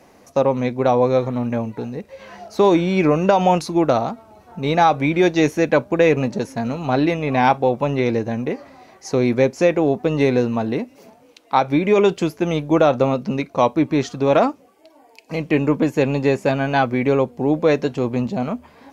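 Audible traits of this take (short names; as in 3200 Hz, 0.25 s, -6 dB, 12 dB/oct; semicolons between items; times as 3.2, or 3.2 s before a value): noise floor -51 dBFS; spectral tilt -6.0 dB/oct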